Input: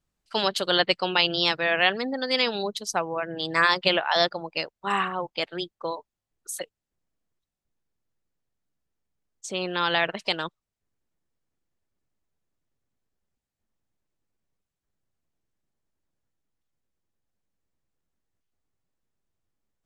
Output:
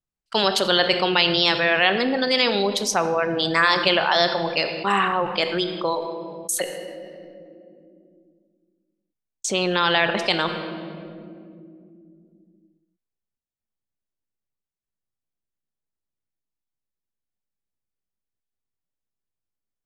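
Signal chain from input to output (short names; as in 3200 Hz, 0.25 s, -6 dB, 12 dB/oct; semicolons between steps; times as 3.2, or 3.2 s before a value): gate -46 dBFS, range -53 dB; on a send at -11 dB: reverb RT60 1.5 s, pre-delay 3 ms; on the sum: fast leveller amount 50%; gain +1.5 dB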